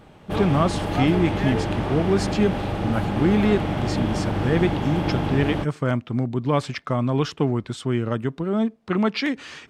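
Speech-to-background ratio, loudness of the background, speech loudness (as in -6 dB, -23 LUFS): 2.0 dB, -26.0 LUFS, -24.0 LUFS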